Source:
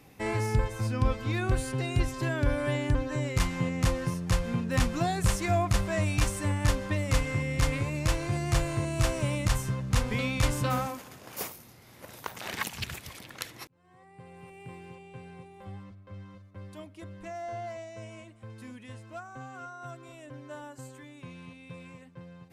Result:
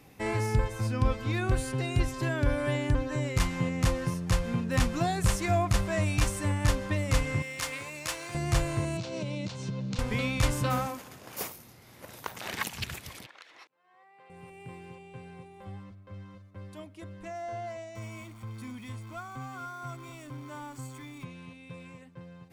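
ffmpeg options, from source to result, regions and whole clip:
-filter_complex "[0:a]asettb=1/sr,asplit=3[s0][s1][s2];[s0]atrim=end=7.424[s3];[s1]atrim=start=7.42:end=8.35,asetpts=PTS-STARTPTS,afade=t=in:d=0.004:c=qsin,afade=t=out:st=0.926:d=0.004:c=qsin,highpass=f=1100:p=1,highshelf=f=8800:g=4,acrusher=bits=7:mode=log:mix=0:aa=0.000001[s4];[s2]atrim=start=8.346[s5];[s3][s4]acrossfade=d=0.004:c1=hsin:c2=qsin[s6];[s6][s5]acrossfade=d=0.004:c1=qsin:c2=hsin,asettb=1/sr,asplit=3[s7][s8][s9];[s7]atrim=end=8.974[s10];[s8]atrim=start=8.97:end=9.99,asetpts=PTS-STARTPTS,afade=t=in:d=0.004:c=qsin,afade=t=out:st=1.016:d=0.004:c=qsin,acompressor=threshold=0.0316:ratio=5:attack=3.2:release=140:knee=1:detection=peak,highpass=f=120:w=0.5412,highpass=f=120:w=1.3066,equalizer=f=180:t=q:w=4:g=7,equalizer=f=480:t=q:w=4:g=3,equalizer=f=770:t=q:w=4:g=-4,equalizer=f=1200:t=q:w=4:g=-9,equalizer=f=1800:t=q:w=4:g=-9,equalizer=f=4100:t=q:w=4:g=6,lowpass=f=6300:w=0.5412,lowpass=f=6300:w=1.3066[s11];[s9]atrim=start=9.986[s12];[s10][s11]acrossfade=d=0.004:c1=hsin:c2=qsin[s13];[s13][s12]acrossfade=d=0.004:c1=qsin:c2=hsin,asettb=1/sr,asplit=3[s14][s15][s16];[s14]atrim=end=13.264[s17];[s15]atrim=start=13.26:end=14.3,asetpts=PTS-STARTPTS,afade=t=in:d=0.004:c=qsin,afade=t=out:st=1.036:d=0.004:c=qsin,highpass=650,lowpass=4000,acompressor=threshold=0.00355:ratio=3:attack=3.2:release=140:knee=1:detection=peak[s18];[s16]atrim=start=14.296[s19];[s17][s18]acrossfade=d=0.004:c1=hsin:c2=qsin[s20];[s20][s19]acrossfade=d=0.004:c1=qsin:c2=hsin,asettb=1/sr,asplit=3[s21][s22][s23];[s21]atrim=end=17.954[s24];[s22]atrim=start=17.95:end=21.25,asetpts=PTS-STARTPTS,afade=t=in:d=0.004:c=qsin,afade=t=out:st=3.296:d=0.004:c=qsin,aeval=exprs='val(0)+0.5*0.00316*sgn(val(0))':c=same,aecho=1:1:0.9:0.54,atrim=end_sample=145530[s25];[s23]atrim=start=21.246[s26];[s24][s25]acrossfade=d=0.004:c1=hsin:c2=qsin[s27];[s27][s26]acrossfade=d=0.004:c1=qsin:c2=hsin"

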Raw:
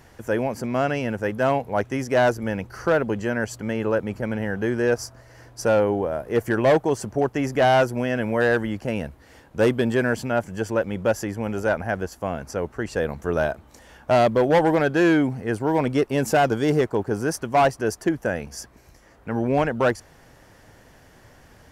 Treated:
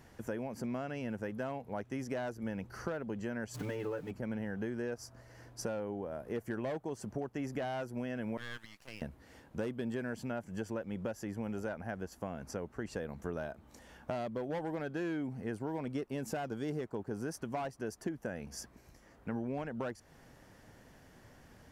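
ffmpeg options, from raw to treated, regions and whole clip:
-filter_complex "[0:a]asettb=1/sr,asplit=3[s0][s1][s2];[s0]atrim=end=3.544[s3];[s1]atrim=start=3.54:end=4.11,asetpts=PTS-STARTPTS,afade=t=in:d=0.004:c=qsin,afade=t=out:st=0.566:d=0.004:c=qsin,aeval=exprs='val(0)+0.5*0.0158*sgn(val(0))':c=same,aecho=1:1:6.8:0.95,atrim=end_sample=25137[s4];[s2]atrim=start=4.106[s5];[s3][s4]acrossfade=d=0.004:c1=hsin:c2=qsin[s6];[s6][s5]acrossfade=d=0.004:c1=qsin:c2=hsin,asettb=1/sr,asplit=3[s7][s8][s9];[s7]atrim=end=8.374[s10];[s8]atrim=start=8.37:end=9.02,asetpts=PTS-STARTPTS,afade=t=in:d=0.004:c=qsin,afade=t=out:st=0.646:d=0.004:c=qsin,highpass=1300,aeval=exprs='max(val(0),0)':c=same[s11];[s9]atrim=start=9.016[s12];[s10][s11]acrossfade=d=0.004:c1=hsin:c2=qsin[s13];[s13][s12]acrossfade=d=0.004:c1=qsin:c2=hsin,acompressor=threshold=0.0355:ratio=5,equalizer=f=210:t=o:w=1.1:g=5,volume=0.376"

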